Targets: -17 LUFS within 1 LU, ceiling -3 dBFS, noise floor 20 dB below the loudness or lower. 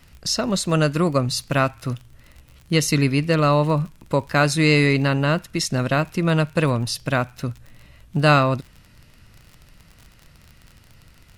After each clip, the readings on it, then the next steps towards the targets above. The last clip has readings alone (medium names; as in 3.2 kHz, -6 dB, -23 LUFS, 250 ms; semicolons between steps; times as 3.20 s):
tick rate 40 per s; loudness -20.5 LUFS; peak level -4.0 dBFS; loudness target -17.0 LUFS
-> de-click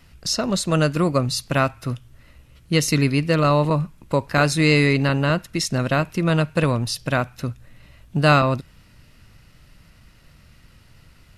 tick rate 0.088 per s; loudness -20.5 LUFS; peak level -4.0 dBFS; loudness target -17.0 LUFS
-> trim +3.5 dB; peak limiter -3 dBFS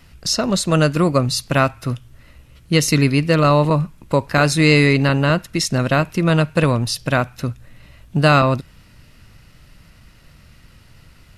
loudness -17.5 LUFS; peak level -3.0 dBFS; noise floor -48 dBFS